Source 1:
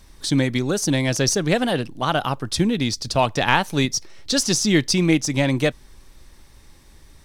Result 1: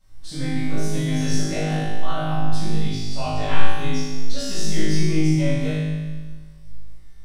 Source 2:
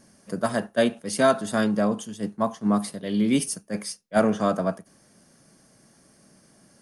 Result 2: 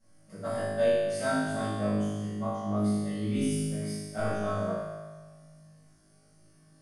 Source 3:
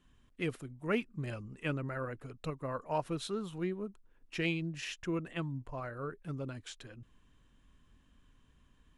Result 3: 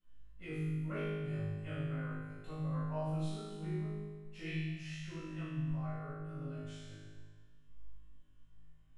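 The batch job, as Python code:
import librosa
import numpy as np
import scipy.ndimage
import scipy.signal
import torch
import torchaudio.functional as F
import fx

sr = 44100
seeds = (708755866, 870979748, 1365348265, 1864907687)

y = fx.low_shelf(x, sr, hz=81.0, db=8.0)
y = fx.comb_fb(y, sr, f0_hz=52.0, decay_s=1.4, harmonics='all', damping=0.0, mix_pct=100)
y = fx.room_shoebox(y, sr, seeds[0], volume_m3=520.0, walls='furnished', distance_m=7.0)
y = y * librosa.db_to_amplitude(-3.0)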